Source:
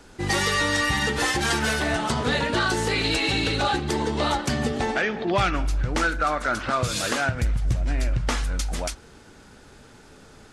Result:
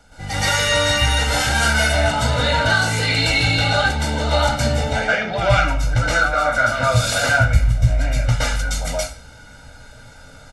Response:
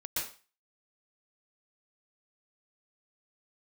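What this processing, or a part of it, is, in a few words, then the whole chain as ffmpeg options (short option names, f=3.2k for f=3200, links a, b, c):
microphone above a desk: -filter_complex "[0:a]aecho=1:1:1.4:0.83[a];[1:a]atrim=start_sample=2205[b];[a][b]afir=irnorm=-1:irlink=0"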